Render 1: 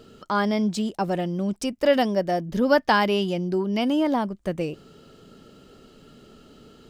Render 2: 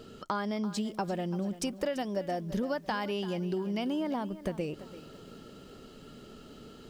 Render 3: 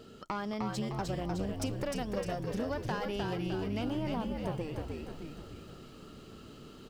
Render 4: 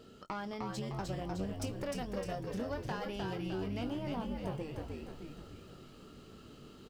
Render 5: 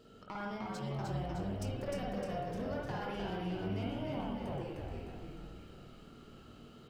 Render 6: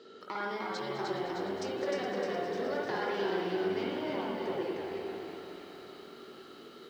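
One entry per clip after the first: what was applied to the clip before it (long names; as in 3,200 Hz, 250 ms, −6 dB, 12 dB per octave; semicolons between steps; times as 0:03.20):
downward compressor 12 to 1, threshold −29 dBFS, peak gain reduction 16 dB; feedback echo at a low word length 338 ms, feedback 35%, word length 9 bits, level −14.5 dB
one-sided soft clipper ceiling −32 dBFS; on a send: echo with shifted repeats 305 ms, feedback 54%, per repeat −76 Hz, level −3 dB; on the sum: level −2.5 dB
double-tracking delay 21 ms −9 dB; level −4 dB
convolution reverb RT60 0.90 s, pre-delay 49 ms, DRR −3 dB; level −5 dB
loudspeaker in its box 370–6,200 Hz, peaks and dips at 380 Hz +9 dB, 670 Hz −6 dB, 1,900 Hz +5 dB, 2,700 Hz −5 dB, 4,000 Hz +6 dB; feedback echo at a low word length 208 ms, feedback 80%, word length 11 bits, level −11 dB; level +6.5 dB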